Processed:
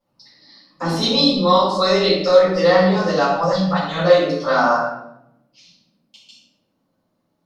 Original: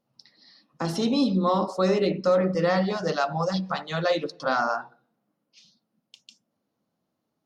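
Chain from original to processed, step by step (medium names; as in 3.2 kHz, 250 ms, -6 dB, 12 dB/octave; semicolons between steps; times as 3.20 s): 1.01–2.69 s: graphic EQ 125/250/4000 Hz -6/-7/+11 dB; reverberation RT60 0.80 s, pre-delay 3 ms, DRR -12 dB; trim -7 dB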